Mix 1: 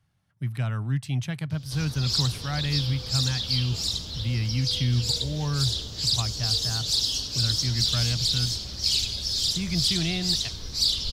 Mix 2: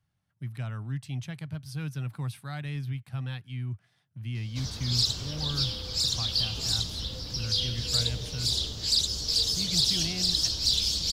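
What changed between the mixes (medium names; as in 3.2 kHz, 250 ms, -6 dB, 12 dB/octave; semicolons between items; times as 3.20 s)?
speech -7.0 dB; background: entry +2.85 s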